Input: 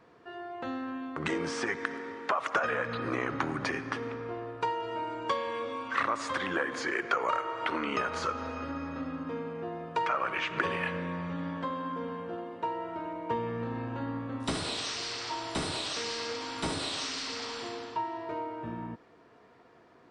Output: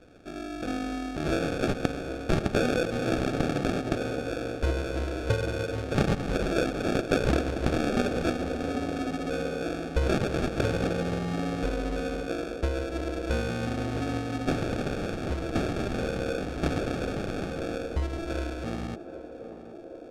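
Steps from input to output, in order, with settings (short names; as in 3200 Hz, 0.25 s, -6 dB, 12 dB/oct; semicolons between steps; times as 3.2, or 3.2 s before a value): sample-rate reducer 1000 Hz, jitter 0%; air absorption 65 m; narrowing echo 0.777 s, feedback 82%, band-pass 470 Hz, level -10 dB; gain +5 dB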